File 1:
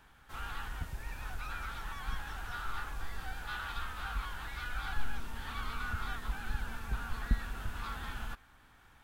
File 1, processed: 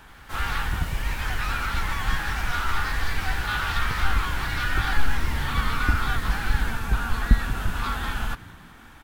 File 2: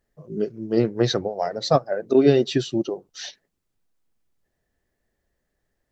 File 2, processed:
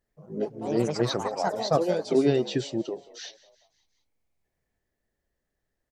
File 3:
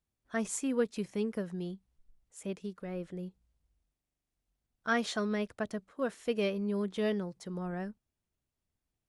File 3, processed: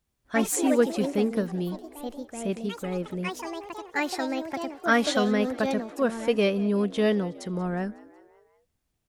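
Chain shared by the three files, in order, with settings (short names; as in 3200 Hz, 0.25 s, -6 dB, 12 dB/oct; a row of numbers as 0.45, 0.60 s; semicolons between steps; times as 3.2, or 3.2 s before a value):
echoes that change speed 85 ms, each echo +4 st, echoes 3, each echo -6 dB; frequency-shifting echo 0.183 s, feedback 55%, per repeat +69 Hz, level -20.5 dB; match loudness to -27 LUFS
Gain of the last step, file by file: +12.5, -5.5, +8.0 dB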